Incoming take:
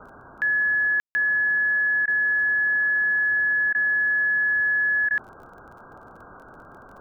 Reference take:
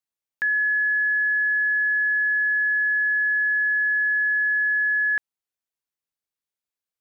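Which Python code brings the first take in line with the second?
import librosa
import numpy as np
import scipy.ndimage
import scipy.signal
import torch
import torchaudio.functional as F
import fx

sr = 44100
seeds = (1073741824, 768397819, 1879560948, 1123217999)

y = fx.fix_declick_ar(x, sr, threshold=6.5)
y = fx.fix_ambience(y, sr, seeds[0], print_start_s=5.41, print_end_s=5.91, start_s=1.0, end_s=1.15)
y = fx.fix_interpolate(y, sr, at_s=(2.06, 3.73, 5.09), length_ms=16.0)
y = fx.noise_reduce(y, sr, print_start_s=5.41, print_end_s=5.91, reduce_db=30.0)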